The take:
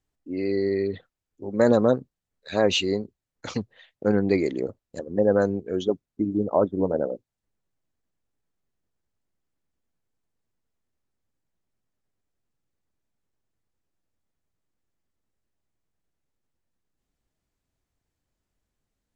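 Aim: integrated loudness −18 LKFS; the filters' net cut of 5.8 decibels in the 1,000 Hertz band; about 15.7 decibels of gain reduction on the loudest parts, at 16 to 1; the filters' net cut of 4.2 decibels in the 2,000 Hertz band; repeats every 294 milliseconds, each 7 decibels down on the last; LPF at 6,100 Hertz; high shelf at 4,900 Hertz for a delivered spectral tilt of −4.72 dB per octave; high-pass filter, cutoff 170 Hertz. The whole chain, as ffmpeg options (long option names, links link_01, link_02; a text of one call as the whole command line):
ffmpeg -i in.wav -af "highpass=170,lowpass=6100,equalizer=frequency=1000:width_type=o:gain=-8,equalizer=frequency=2000:width_type=o:gain=-4,highshelf=frequency=4900:gain=4,acompressor=threshold=-32dB:ratio=16,aecho=1:1:294|588|882|1176|1470:0.447|0.201|0.0905|0.0407|0.0183,volume=20dB" out.wav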